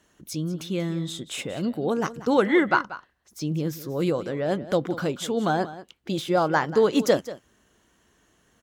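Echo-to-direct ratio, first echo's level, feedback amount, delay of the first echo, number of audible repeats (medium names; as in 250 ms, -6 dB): -15.5 dB, -15.5 dB, no regular repeats, 186 ms, 1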